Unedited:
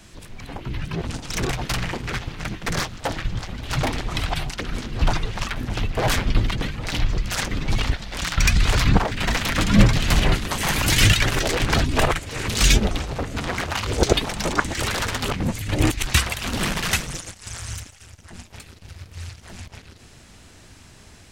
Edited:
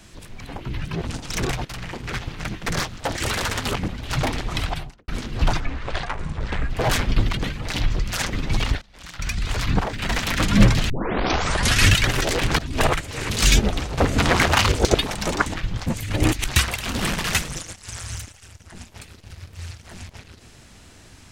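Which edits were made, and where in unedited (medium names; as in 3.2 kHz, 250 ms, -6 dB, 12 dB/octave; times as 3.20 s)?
1.65–2.23 s: fade in, from -13 dB
3.15–3.48 s: swap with 14.72–15.45 s
4.21–4.68 s: studio fade out
5.20–5.88 s: speed 62%
8.00–9.55 s: fade in, from -23.5 dB
10.08 s: tape start 1.06 s
11.77–12.02 s: fade in, from -21.5 dB
13.16–13.90 s: gain +8.5 dB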